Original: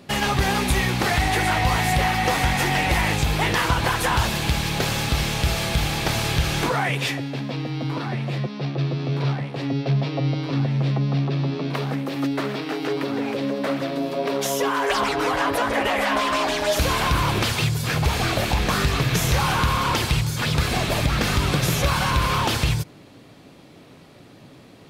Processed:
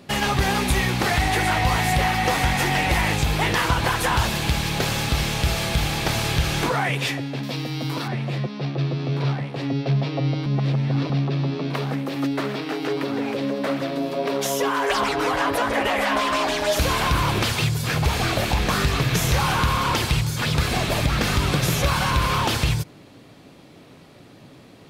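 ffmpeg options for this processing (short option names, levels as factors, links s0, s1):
-filter_complex "[0:a]asettb=1/sr,asplit=3[s0][s1][s2];[s0]atrim=end=7.434[s3];[s1]atrim=start=7.43:end=8.08,asetpts=PTS-STARTPTS,afade=t=in:d=0.004:c=qsin,afade=t=out:st=0.646:d=0.004:c=qsin,aemphasis=mode=production:type=75fm[s4];[s2]atrim=start=8.076[s5];[s3][s4]acrossfade=d=0.004:c1=hsin:c2=qsin[s6];[s6][s5]acrossfade=d=0.004:c1=qsin:c2=hsin,asplit=3[s7][s8][s9];[s7]atrim=end=10.462[s10];[s8]atrim=start=10.458:end=11.102,asetpts=PTS-STARTPTS,areverse[s11];[s9]atrim=start=11.098[s12];[s10][s11]acrossfade=d=0.004:c1=hsin:c2=hsin[s13];[s13][s12]acrossfade=d=0.004:c1=hsin:c2=hsin"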